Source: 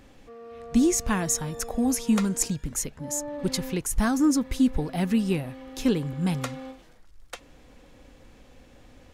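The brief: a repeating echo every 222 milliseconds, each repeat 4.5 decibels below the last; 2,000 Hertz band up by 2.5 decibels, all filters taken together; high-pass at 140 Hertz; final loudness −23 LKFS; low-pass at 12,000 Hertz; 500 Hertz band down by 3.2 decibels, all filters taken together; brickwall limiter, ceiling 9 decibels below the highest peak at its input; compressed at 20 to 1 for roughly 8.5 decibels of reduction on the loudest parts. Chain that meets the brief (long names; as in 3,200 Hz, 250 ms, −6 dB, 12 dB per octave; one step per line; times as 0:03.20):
high-pass filter 140 Hz
low-pass filter 12,000 Hz
parametric band 500 Hz −4.5 dB
parametric band 2,000 Hz +3.5 dB
downward compressor 20 to 1, threshold −26 dBFS
brickwall limiter −23.5 dBFS
repeating echo 222 ms, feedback 60%, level −4.5 dB
level +9 dB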